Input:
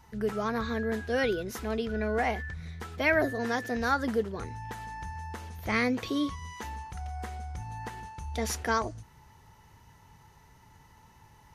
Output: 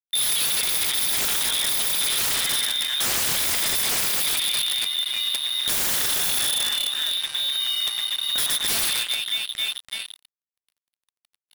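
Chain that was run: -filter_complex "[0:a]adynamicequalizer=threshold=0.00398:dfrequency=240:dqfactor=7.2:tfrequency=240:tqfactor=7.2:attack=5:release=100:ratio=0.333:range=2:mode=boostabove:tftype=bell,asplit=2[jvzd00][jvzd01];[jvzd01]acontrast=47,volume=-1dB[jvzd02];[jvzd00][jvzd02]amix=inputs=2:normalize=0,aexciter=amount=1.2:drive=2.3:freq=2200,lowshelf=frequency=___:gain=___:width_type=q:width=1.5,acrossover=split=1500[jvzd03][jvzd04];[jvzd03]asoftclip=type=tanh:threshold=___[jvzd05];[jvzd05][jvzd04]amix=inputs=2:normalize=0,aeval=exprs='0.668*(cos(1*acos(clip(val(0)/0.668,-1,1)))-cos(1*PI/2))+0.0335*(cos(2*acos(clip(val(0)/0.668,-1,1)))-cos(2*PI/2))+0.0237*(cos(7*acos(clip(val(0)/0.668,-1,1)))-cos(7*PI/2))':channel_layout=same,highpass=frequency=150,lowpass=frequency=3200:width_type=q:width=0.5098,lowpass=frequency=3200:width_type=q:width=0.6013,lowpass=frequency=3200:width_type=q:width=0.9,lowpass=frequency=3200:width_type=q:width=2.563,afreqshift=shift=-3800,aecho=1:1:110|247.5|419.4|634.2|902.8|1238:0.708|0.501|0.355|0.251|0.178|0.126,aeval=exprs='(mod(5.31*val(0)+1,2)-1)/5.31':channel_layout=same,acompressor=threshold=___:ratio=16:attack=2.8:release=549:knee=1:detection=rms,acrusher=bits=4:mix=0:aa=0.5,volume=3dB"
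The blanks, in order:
340, 10.5, -9dB, -22dB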